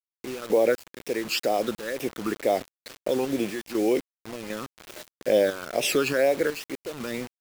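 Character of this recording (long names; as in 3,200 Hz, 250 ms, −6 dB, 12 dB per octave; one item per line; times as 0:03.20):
phaser sweep stages 12, 2.1 Hz, lowest notch 610–1,400 Hz
sample-and-hold tremolo 4 Hz, depth 95%
a quantiser's noise floor 8 bits, dither none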